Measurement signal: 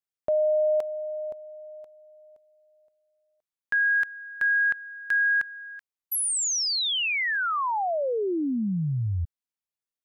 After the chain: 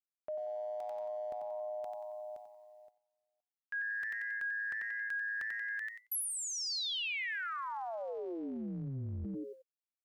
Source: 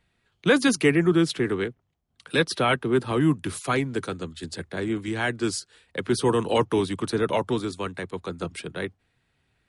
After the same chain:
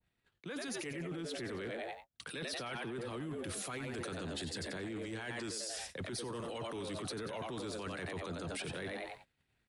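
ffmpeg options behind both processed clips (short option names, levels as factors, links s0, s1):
-filter_complex "[0:a]asplit=5[s0][s1][s2][s3][s4];[s1]adelay=91,afreqshift=110,volume=0.335[s5];[s2]adelay=182,afreqshift=220,volume=0.12[s6];[s3]adelay=273,afreqshift=330,volume=0.0437[s7];[s4]adelay=364,afreqshift=440,volume=0.0157[s8];[s0][s5][s6][s7][s8]amix=inputs=5:normalize=0,areverse,acompressor=threshold=0.02:ratio=12:attack=0.11:release=117:knee=6:detection=peak,areverse,agate=range=0.0224:threshold=0.001:ratio=3:release=64:detection=peak,alimiter=level_in=8.41:limit=0.0631:level=0:latency=1:release=23,volume=0.119,adynamicequalizer=threshold=0.00141:dfrequency=1600:dqfactor=0.7:tfrequency=1600:tqfactor=0.7:attack=5:release=100:ratio=0.375:range=2:mode=boostabove:tftype=highshelf,volume=2.37"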